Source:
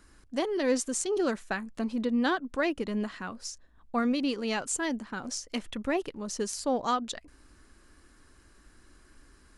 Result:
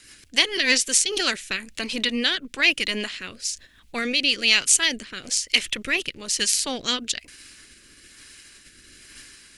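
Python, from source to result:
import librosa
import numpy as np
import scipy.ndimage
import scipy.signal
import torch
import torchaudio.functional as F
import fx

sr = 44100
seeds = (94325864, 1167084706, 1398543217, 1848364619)

y = fx.spec_clip(x, sr, under_db=13)
y = fx.high_shelf_res(y, sr, hz=1600.0, db=13.5, q=1.5)
y = fx.rotary_switch(y, sr, hz=6.7, then_hz=1.1, switch_at_s=0.5)
y = y * librosa.db_to_amplitude(1.5)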